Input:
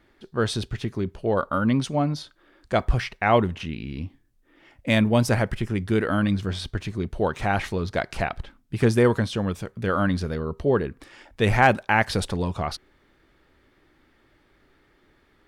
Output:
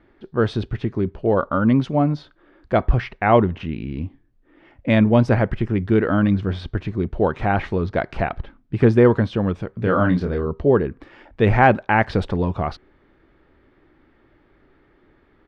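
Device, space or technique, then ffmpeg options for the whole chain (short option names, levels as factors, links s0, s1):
phone in a pocket: -filter_complex "[0:a]asplit=3[s0][s1][s2];[s0]afade=t=out:st=9.79:d=0.02[s3];[s1]asplit=2[s4][s5];[s5]adelay=28,volume=0.596[s6];[s4][s6]amix=inputs=2:normalize=0,afade=t=in:st=9.79:d=0.02,afade=t=out:st=10.45:d=0.02[s7];[s2]afade=t=in:st=10.45:d=0.02[s8];[s3][s7][s8]amix=inputs=3:normalize=0,lowpass=3500,equalizer=f=330:t=o:w=0.77:g=2,highshelf=f=2200:g=-8.5,volume=1.68"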